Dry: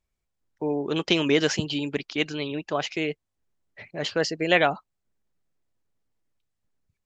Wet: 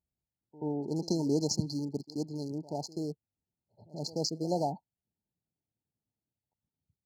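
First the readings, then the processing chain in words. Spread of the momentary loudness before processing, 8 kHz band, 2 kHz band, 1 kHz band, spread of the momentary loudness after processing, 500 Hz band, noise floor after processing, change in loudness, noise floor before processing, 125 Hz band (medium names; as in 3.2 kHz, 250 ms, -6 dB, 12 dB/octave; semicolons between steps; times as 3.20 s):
11 LU, no reading, under -40 dB, -9.0 dB, 10 LU, -9.5 dB, under -85 dBFS, -8.5 dB, -81 dBFS, -2.0 dB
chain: local Wiener filter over 15 samples; high-pass 93 Hz; peaking EQ 530 Hz -10.5 dB 1.7 oct; painted sound fall, 4.63–6.53 s, 1.4–3.7 kHz -30 dBFS; brick-wall FIR band-stop 950–4100 Hz; reverse echo 82 ms -18.5 dB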